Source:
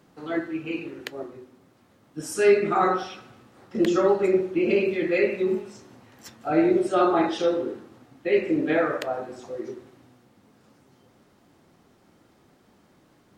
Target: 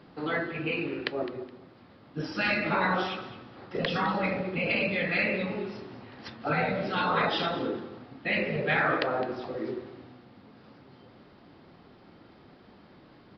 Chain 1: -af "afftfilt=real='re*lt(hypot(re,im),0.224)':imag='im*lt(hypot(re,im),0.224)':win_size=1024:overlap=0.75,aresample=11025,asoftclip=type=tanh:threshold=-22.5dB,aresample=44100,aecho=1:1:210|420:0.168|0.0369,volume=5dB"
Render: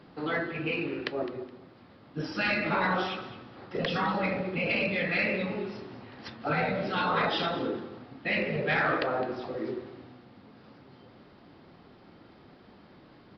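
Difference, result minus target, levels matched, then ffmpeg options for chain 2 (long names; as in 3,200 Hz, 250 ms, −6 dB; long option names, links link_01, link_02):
soft clipping: distortion +10 dB
-af "afftfilt=real='re*lt(hypot(re,im),0.224)':imag='im*lt(hypot(re,im),0.224)':win_size=1024:overlap=0.75,aresample=11025,asoftclip=type=tanh:threshold=-15dB,aresample=44100,aecho=1:1:210|420:0.168|0.0369,volume=5dB"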